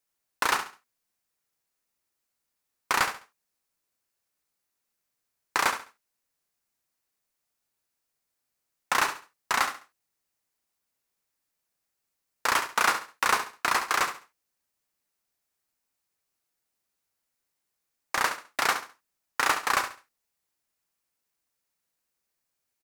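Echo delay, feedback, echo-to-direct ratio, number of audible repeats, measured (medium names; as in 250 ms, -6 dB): 69 ms, 27%, -9.5 dB, 3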